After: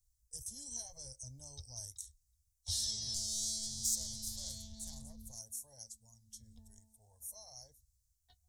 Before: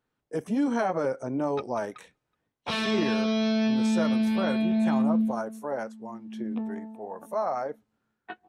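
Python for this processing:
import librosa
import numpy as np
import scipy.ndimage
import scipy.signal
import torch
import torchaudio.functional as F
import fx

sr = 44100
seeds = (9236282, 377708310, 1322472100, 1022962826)

y = fx.self_delay(x, sr, depth_ms=0.14, at=(3.14, 5.39))
y = scipy.signal.sosfilt(scipy.signal.cheby2(4, 50, [170.0, 2700.0], 'bandstop', fs=sr, output='sos'), y)
y = fx.high_shelf(y, sr, hz=7100.0, db=-7.5)
y = y * librosa.db_to_amplitude(17.0)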